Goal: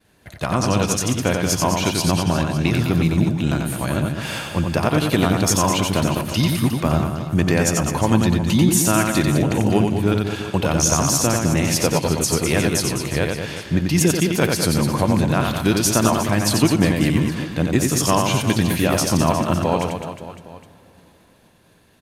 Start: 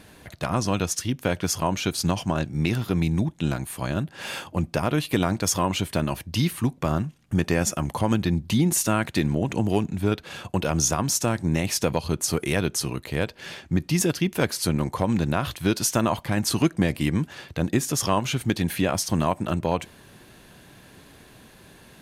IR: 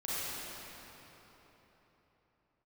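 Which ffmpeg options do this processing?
-filter_complex "[0:a]agate=range=-33dB:threshold=-40dB:ratio=3:detection=peak,aecho=1:1:90|207|359.1|556.8|813.9:0.631|0.398|0.251|0.158|0.1,asplit=2[link_01][link_02];[1:a]atrim=start_sample=2205[link_03];[link_02][link_03]afir=irnorm=-1:irlink=0,volume=-24.5dB[link_04];[link_01][link_04]amix=inputs=2:normalize=0,volume=3.5dB"

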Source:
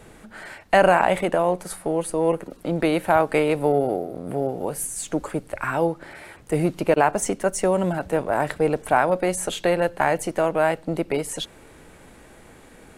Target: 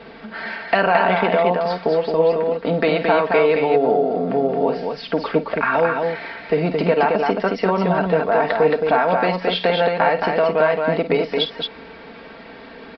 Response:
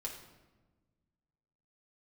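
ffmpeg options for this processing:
-filter_complex "[0:a]highpass=frequency=240:poles=1,aecho=1:1:4.4:0.64,asplit=2[link_01][link_02];[link_02]alimiter=limit=-13dB:level=0:latency=1,volume=-1dB[link_03];[link_01][link_03]amix=inputs=2:normalize=0,acompressor=threshold=-20dB:ratio=2,asplit=2[link_04][link_05];[link_05]aecho=0:1:51|220:0.266|0.631[link_06];[link_04][link_06]amix=inputs=2:normalize=0,aresample=11025,aresample=44100,volume=2.5dB"

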